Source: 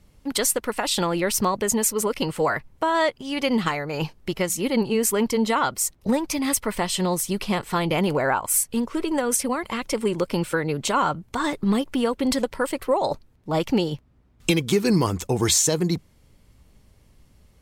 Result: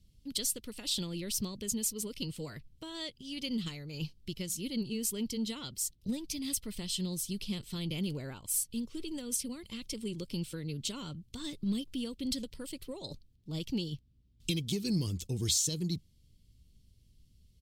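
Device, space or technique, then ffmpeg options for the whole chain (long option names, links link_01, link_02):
parallel distortion: -filter_complex "[0:a]firequalizer=gain_entry='entry(110,0);entry(770,-25);entry(1700,-19);entry(3100,-1);entry(4500,1);entry(6600,-3)':delay=0.05:min_phase=1,asplit=2[link_01][link_02];[link_02]asoftclip=type=hard:threshold=-22.5dB,volume=-14dB[link_03];[link_01][link_03]amix=inputs=2:normalize=0,volume=-8.5dB"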